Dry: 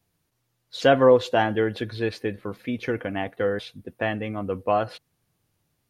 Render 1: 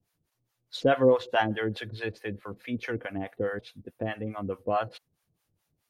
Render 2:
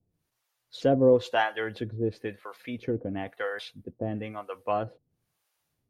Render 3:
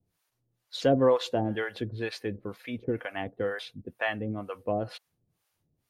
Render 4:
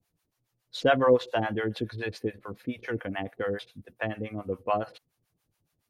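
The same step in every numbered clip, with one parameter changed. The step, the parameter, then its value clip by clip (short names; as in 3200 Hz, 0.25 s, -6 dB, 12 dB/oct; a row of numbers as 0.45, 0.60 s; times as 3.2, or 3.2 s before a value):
harmonic tremolo, rate: 4.7, 1, 2.1, 7.1 Hz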